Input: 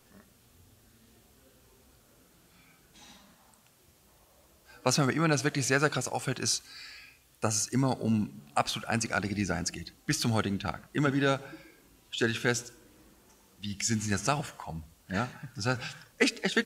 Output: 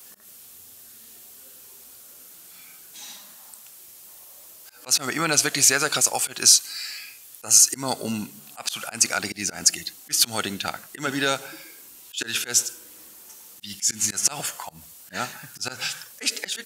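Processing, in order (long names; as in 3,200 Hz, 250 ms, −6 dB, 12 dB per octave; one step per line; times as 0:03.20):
brickwall limiter −18 dBFS, peak gain reduction 8 dB
volume swells 138 ms
RIAA equalisation recording
level +6.5 dB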